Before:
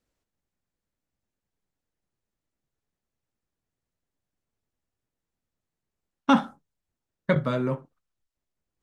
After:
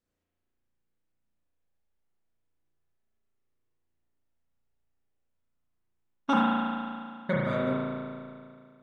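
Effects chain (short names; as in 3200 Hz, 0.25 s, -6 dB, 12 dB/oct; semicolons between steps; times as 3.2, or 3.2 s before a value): spring tank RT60 2.2 s, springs 35 ms, chirp 65 ms, DRR -6 dB; gain -7.5 dB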